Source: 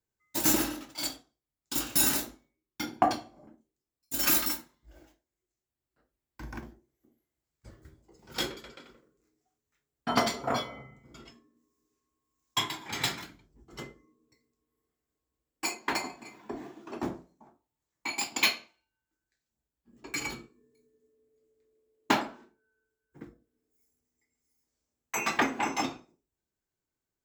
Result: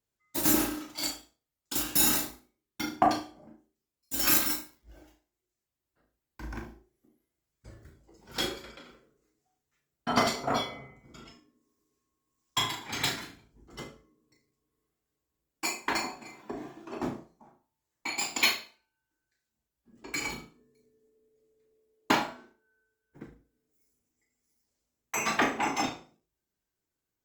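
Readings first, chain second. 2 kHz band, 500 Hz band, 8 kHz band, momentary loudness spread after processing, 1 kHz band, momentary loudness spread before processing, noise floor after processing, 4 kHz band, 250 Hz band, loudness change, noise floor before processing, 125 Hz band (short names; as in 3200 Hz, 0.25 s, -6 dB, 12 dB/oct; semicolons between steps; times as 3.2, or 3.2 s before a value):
+1.0 dB, +1.0 dB, +0.5 dB, 20 LU, +1.0 dB, 20 LU, under -85 dBFS, +1.0 dB, +1.0 dB, +1.0 dB, under -85 dBFS, +1.0 dB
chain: flutter echo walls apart 6.2 m, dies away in 0.32 s; Opus 24 kbps 48000 Hz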